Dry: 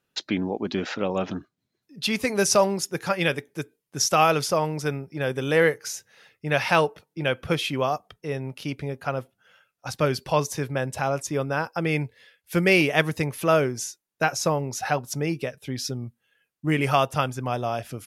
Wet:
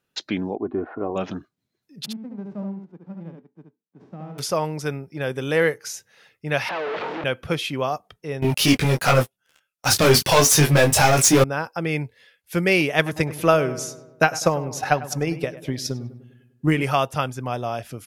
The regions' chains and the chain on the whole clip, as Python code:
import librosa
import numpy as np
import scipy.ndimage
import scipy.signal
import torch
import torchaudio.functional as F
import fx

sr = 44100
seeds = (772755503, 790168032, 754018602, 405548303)

y = fx.chain(x, sr, fx.lowpass(hz=1200.0, slope=24),
    fx.comb(ms=2.8, depth=0.57), at=(0.55, 1.16))
y = fx.envelope_flatten(y, sr, power=0.3, at=(2.04, 4.38), fade=0.02)
y = fx.ladder_bandpass(y, sr, hz=250.0, resonance_pct=45, at=(2.04, 4.38), fade=0.02)
y = fx.echo_single(y, sr, ms=72, db=-4.5, at=(2.04, 4.38), fade=0.02)
y = fx.chain(y, sr, fx.clip_1bit(),
    fx.bandpass_edges(low_hz=400.0, high_hz=2900.0),
    fx.air_absorb(metres=180.0), at=(6.69, 7.24))
y = fx.chain(y, sr, fx.high_shelf(hz=3000.0, db=11.0),
    fx.leveller(passes=5),
    fx.detune_double(cents=10), at=(8.42, 11.44))
y = fx.chain(y, sr, fx.echo_filtered(ms=100, feedback_pct=57, hz=2000.0, wet_db=-12),
    fx.transient(attack_db=7, sustain_db=1), at=(12.96, 16.83))